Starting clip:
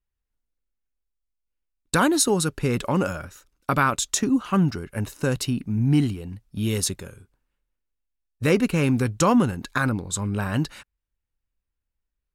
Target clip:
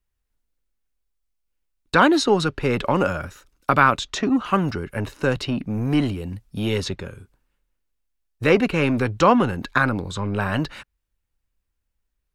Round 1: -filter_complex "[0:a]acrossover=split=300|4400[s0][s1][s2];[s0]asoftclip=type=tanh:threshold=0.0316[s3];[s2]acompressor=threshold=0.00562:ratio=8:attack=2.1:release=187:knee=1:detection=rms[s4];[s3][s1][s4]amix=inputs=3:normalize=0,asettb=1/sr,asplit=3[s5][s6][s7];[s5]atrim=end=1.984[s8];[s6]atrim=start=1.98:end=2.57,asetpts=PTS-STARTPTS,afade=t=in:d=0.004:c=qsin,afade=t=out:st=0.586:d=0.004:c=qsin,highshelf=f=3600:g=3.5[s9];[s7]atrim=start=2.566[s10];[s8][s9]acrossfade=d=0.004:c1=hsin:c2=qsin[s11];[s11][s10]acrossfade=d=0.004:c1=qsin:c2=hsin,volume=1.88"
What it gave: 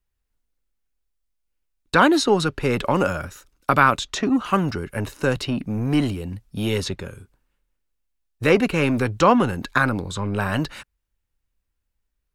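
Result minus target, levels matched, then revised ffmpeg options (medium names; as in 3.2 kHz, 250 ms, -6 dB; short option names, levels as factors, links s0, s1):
compression: peak gain reduction -7 dB
-filter_complex "[0:a]acrossover=split=300|4400[s0][s1][s2];[s0]asoftclip=type=tanh:threshold=0.0316[s3];[s2]acompressor=threshold=0.00224:ratio=8:attack=2.1:release=187:knee=1:detection=rms[s4];[s3][s1][s4]amix=inputs=3:normalize=0,asettb=1/sr,asplit=3[s5][s6][s7];[s5]atrim=end=1.984[s8];[s6]atrim=start=1.98:end=2.57,asetpts=PTS-STARTPTS,afade=t=in:d=0.004:c=qsin,afade=t=out:st=0.586:d=0.004:c=qsin,highshelf=f=3600:g=3.5[s9];[s7]atrim=start=2.566[s10];[s8][s9]acrossfade=d=0.004:c1=hsin:c2=qsin[s11];[s11][s10]acrossfade=d=0.004:c1=qsin:c2=hsin,volume=1.88"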